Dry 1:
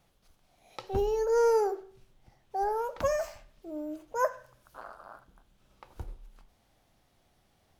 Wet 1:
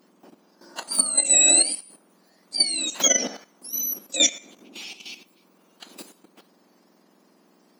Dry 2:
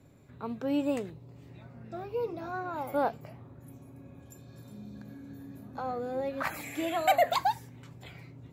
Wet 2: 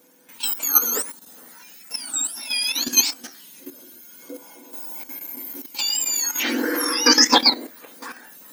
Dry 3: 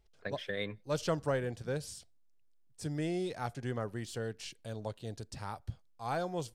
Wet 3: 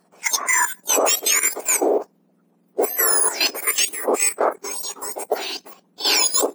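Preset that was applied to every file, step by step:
spectrum inverted on a logarithmic axis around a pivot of 1.9 kHz; level held to a coarse grid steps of 11 dB; normalise loudness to -19 LUFS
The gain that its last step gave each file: +17.5 dB, +21.0 dB, +27.0 dB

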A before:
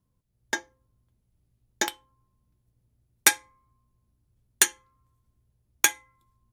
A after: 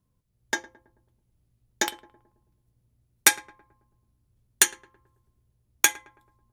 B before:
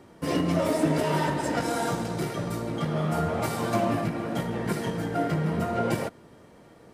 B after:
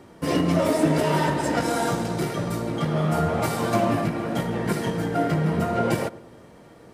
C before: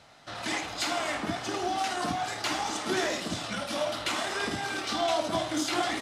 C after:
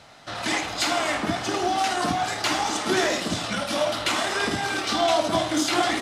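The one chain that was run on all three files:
filtered feedback delay 109 ms, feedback 54%, low-pass 1.2 kHz, level -18 dB; normalise loudness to -24 LUFS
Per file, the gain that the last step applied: +1.0 dB, +3.5 dB, +6.0 dB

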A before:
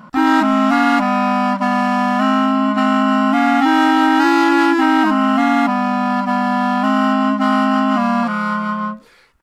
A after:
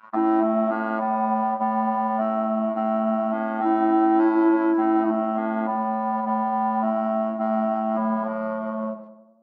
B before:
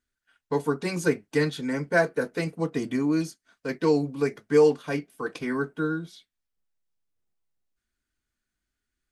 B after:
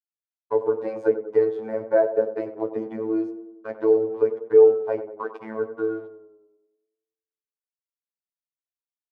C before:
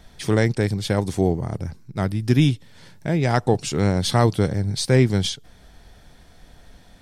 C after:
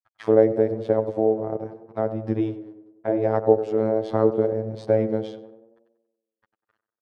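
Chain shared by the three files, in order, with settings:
expander -36 dBFS; treble shelf 2.6 kHz -10 dB; in parallel at +2.5 dB: compression, threshold -23 dBFS; on the sum: crossover distortion -42.5 dBFS; auto-wah 520–1300 Hz, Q 2.6, down, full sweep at -17 dBFS; robot voice 110 Hz; on a send: tape echo 95 ms, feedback 63%, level -10 dB, low-pass 1.3 kHz; on the sum: normalise loudness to -23 LUFS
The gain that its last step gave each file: +3.0 dB, +5.0 dB, +6.5 dB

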